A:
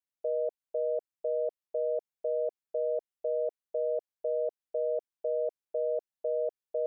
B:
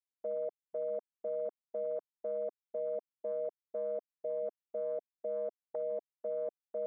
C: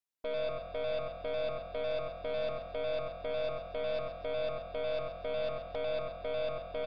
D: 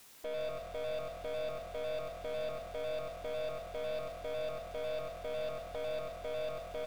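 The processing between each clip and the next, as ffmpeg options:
-af "afwtdn=0.00794,equalizer=f=520:w=1.7:g=-7"
-filter_complex "[0:a]asplit=2[a][b];[b]aecho=0:1:95|190|285|380:0.531|0.165|0.051|0.0158[c];[a][c]amix=inputs=2:normalize=0,aeval=exprs='0.0422*(cos(1*acos(clip(val(0)/0.0422,-1,1)))-cos(1*PI/2))+0.00668*(cos(8*acos(clip(val(0)/0.0422,-1,1)))-cos(8*PI/2))':c=same,asplit=2[d][e];[e]asplit=5[f][g][h][i][j];[f]adelay=133,afreqshift=42,volume=-10dB[k];[g]adelay=266,afreqshift=84,volume=-16dB[l];[h]adelay=399,afreqshift=126,volume=-22dB[m];[i]adelay=532,afreqshift=168,volume=-28.1dB[n];[j]adelay=665,afreqshift=210,volume=-34.1dB[o];[k][l][m][n][o]amix=inputs=5:normalize=0[p];[d][p]amix=inputs=2:normalize=0"
-af "aeval=exprs='val(0)+0.5*0.00668*sgn(val(0))':c=same,volume=-4.5dB"

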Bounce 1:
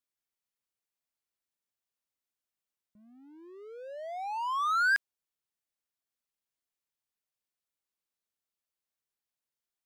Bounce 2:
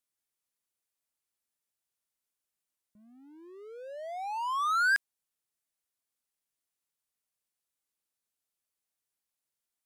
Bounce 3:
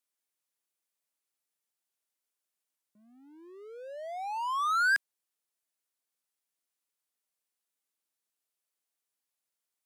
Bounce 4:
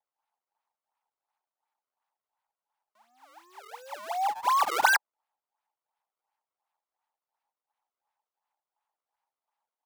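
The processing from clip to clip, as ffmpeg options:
-af "equalizer=f=10k:t=o:w=1.1:g=6"
-af "highpass=230"
-af "aresample=16000,aresample=44100,acrusher=samples=30:mix=1:aa=0.000001:lfo=1:lforange=48:lforate=2.8,highpass=f=860:t=q:w=6.9"

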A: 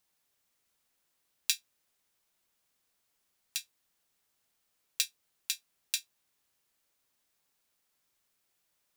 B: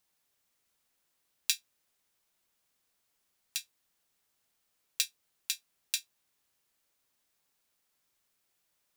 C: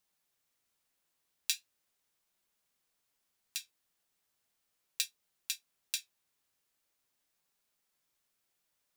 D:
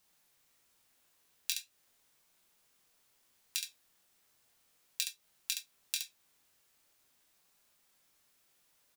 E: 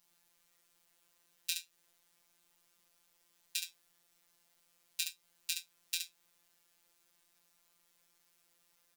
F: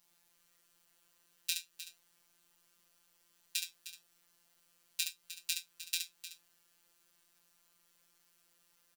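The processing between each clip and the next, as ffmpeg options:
-af anull
-af "flanger=delay=4.8:depth=7.2:regen=-59:speed=0.39:shape=sinusoidal,volume=1dB"
-af "acompressor=threshold=-40dB:ratio=5,aecho=1:1:23|69:0.501|0.501,volume=7.5dB"
-af "afftfilt=real='hypot(re,im)*cos(PI*b)':imag='0':win_size=1024:overlap=0.75,volume=2.5dB"
-af "aecho=1:1:307:0.237,volume=1dB"

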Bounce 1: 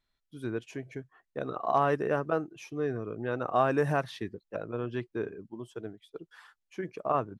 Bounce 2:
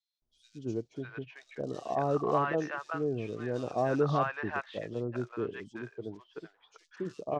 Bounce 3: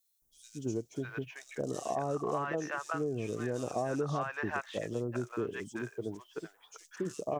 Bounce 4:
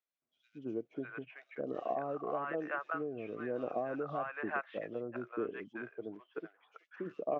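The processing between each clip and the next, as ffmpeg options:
-filter_complex "[0:a]acrusher=bits=6:mode=log:mix=0:aa=0.000001,lowpass=f=6.2k:w=0.5412,lowpass=f=6.2k:w=1.3066,acrossover=split=810|3600[a][b][c];[a]adelay=220[d];[b]adelay=600[e];[d][e][c]amix=inputs=3:normalize=0"
-af "acompressor=threshold=-33dB:ratio=6,aexciter=amount=6.2:drive=4.8:freq=6.1k,volume=3dB"
-af "aphaser=in_gain=1:out_gain=1:delay=1.5:decay=0.23:speed=1.1:type=sinusoidal,highpass=300,equalizer=f=400:t=q:w=4:g=-4,equalizer=f=920:t=q:w=4:g=-8,equalizer=f=1.8k:t=q:w=4:g=-4,lowpass=f=2.4k:w=0.5412,lowpass=f=2.4k:w=1.3066"

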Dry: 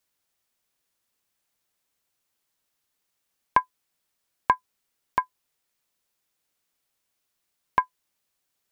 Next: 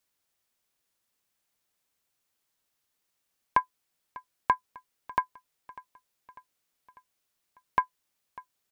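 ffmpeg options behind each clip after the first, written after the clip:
-filter_complex "[0:a]asplit=2[a][b];[b]alimiter=limit=-12.5dB:level=0:latency=1:release=24,volume=-2dB[c];[a][c]amix=inputs=2:normalize=0,aecho=1:1:597|1194|1791|2388:0.1|0.056|0.0314|0.0176,volume=-6.5dB"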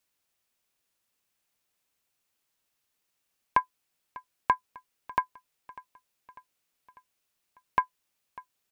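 -af "equalizer=f=2.6k:t=o:w=0.3:g=3"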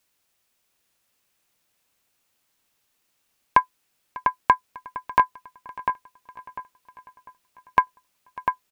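-filter_complex "[0:a]asplit=2[a][b];[b]adelay=698,lowpass=f=2.9k:p=1,volume=-5dB,asplit=2[c][d];[d]adelay=698,lowpass=f=2.9k:p=1,volume=0.28,asplit=2[e][f];[f]adelay=698,lowpass=f=2.9k:p=1,volume=0.28,asplit=2[g][h];[h]adelay=698,lowpass=f=2.9k:p=1,volume=0.28[i];[a][c][e][g][i]amix=inputs=5:normalize=0,volume=7dB"

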